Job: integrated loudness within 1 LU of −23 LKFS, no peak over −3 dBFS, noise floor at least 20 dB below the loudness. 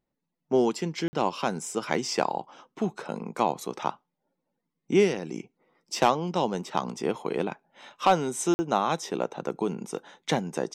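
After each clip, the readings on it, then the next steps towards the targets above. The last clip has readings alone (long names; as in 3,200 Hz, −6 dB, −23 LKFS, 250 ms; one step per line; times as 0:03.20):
number of dropouts 2; longest dropout 50 ms; integrated loudness −28.5 LKFS; sample peak −9.5 dBFS; target loudness −23.0 LKFS
→ repair the gap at 0:01.08/0:08.54, 50 ms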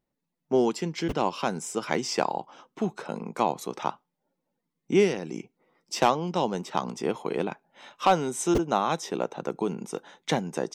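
number of dropouts 0; integrated loudness −28.0 LKFS; sample peak −9.5 dBFS; target loudness −23.0 LKFS
→ level +5 dB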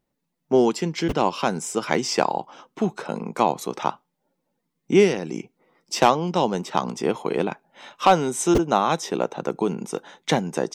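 integrated loudness −23.0 LKFS; sample peak −4.5 dBFS; background noise floor −78 dBFS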